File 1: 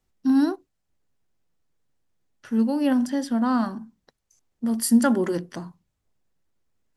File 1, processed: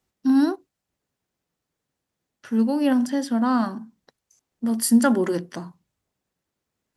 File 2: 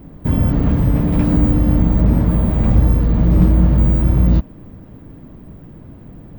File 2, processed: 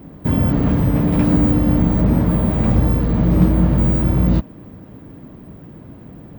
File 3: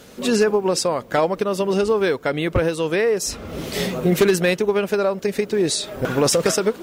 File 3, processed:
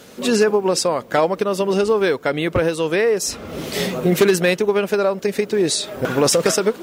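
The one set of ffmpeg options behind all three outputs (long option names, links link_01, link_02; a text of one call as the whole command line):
ffmpeg -i in.wav -af "highpass=frequency=120:poles=1,volume=2dB" out.wav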